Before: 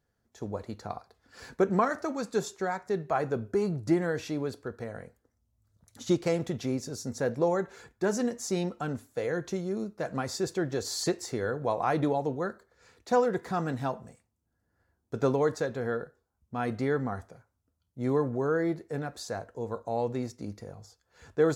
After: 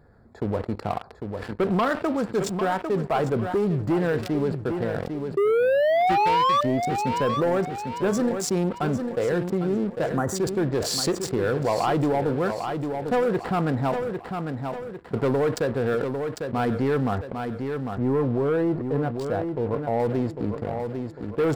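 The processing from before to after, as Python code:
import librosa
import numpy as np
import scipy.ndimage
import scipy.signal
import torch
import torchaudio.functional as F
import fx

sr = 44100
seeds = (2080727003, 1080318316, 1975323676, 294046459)

y = fx.wiener(x, sr, points=15)
y = fx.spec_paint(y, sr, seeds[0], shape='rise', start_s=5.37, length_s=1.24, low_hz=390.0, high_hz=1200.0, level_db=-19.0)
y = fx.leveller(y, sr, passes=3)
y = fx.peak_eq(y, sr, hz=6400.0, db=-7.5, octaves=0.25)
y = fx.spec_box(y, sr, start_s=10.16, length_s=0.2, low_hz=2000.0, high_hz=5700.0, gain_db=-17)
y = fx.high_shelf(y, sr, hz=2000.0, db=-9.0, at=(17.17, 20.0))
y = fx.echo_feedback(y, sr, ms=800, feedback_pct=22, wet_db=-12.0)
y = fx.env_flatten(y, sr, amount_pct=50)
y = F.gain(torch.from_numpy(y), -7.0).numpy()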